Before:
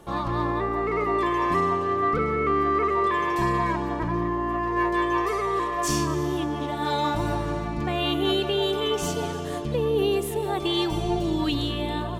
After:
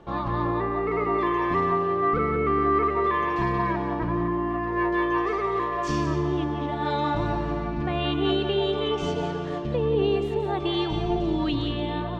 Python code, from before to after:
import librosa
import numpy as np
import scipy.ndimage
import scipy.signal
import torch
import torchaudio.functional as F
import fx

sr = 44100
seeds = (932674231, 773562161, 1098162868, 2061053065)

y = fx.air_absorb(x, sr, metres=190.0)
y = y + 10.0 ** (-9.5 / 20.0) * np.pad(y, (int(178 * sr / 1000.0), 0))[:len(y)]